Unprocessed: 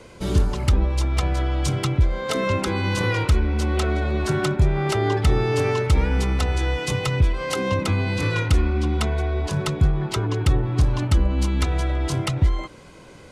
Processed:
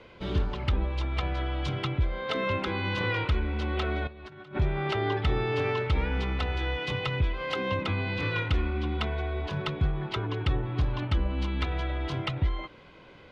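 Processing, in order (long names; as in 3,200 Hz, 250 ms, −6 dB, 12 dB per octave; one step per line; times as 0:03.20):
drawn EQ curve 180 Hz 0 dB, 3,400 Hz +6 dB, 8,300 Hz −21 dB
0:04.07–0:04.59: compressor whose output falls as the input rises −30 dBFS, ratio −0.5
level −8.5 dB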